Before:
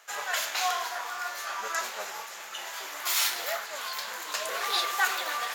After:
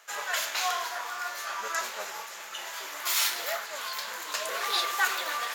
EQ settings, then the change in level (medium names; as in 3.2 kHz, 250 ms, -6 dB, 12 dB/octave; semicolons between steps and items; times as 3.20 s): band-stop 760 Hz, Q 15; 0.0 dB